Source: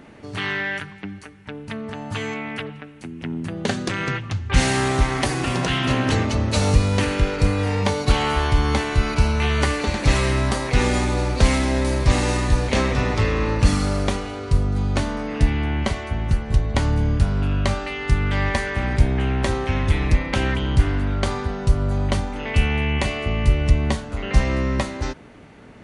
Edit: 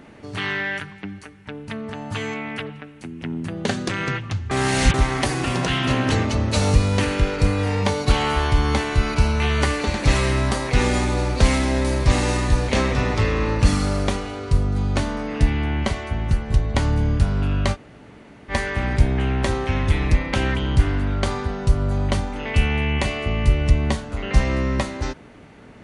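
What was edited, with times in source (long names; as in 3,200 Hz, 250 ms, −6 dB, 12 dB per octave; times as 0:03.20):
0:04.51–0:04.94: reverse
0:17.74–0:18.51: fill with room tone, crossfade 0.06 s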